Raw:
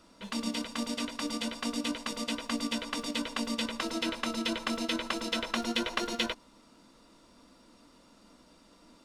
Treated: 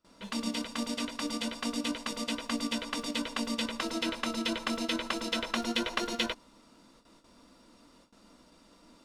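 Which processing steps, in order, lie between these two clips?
noise gate with hold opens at −49 dBFS

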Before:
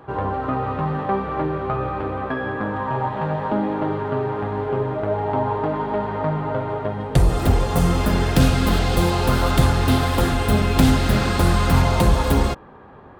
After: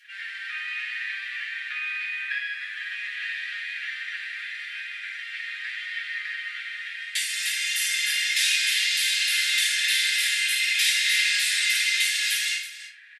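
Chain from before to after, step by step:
Butterworth high-pass 1,800 Hz 72 dB per octave
downward compressor 1.5 to 1, threshold −41 dBFS, peak gain reduction 6.5 dB
linear-phase brick-wall low-pass 12,000 Hz
multi-tap delay 54/133/325 ms −6/−13.5/−14 dB
rectangular room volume 30 cubic metres, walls mixed, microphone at 2.3 metres

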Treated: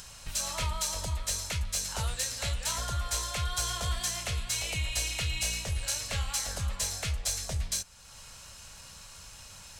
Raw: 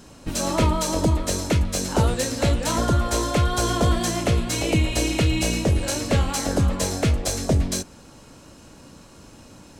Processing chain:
guitar amp tone stack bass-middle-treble 10-0-10
in parallel at +1 dB: upward compression, threshold −30 dBFS
on the sum: level −9 dB

